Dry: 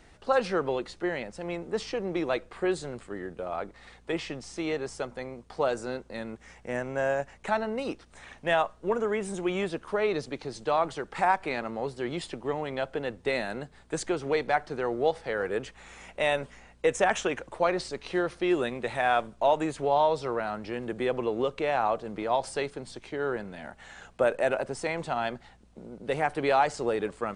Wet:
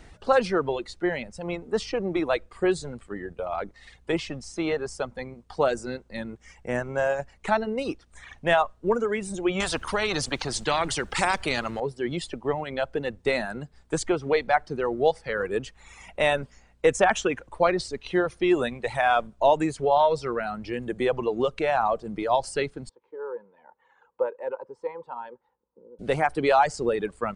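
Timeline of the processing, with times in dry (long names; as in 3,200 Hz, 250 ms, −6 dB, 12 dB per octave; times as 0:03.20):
0:09.60–0:11.80: every bin compressed towards the loudest bin 2 to 1
0:22.89–0:25.99: pair of resonant band-passes 680 Hz, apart 0.88 octaves
whole clip: reverb reduction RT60 1.7 s; low-shelf EQ 150 Hz +6 dB; level +4 dB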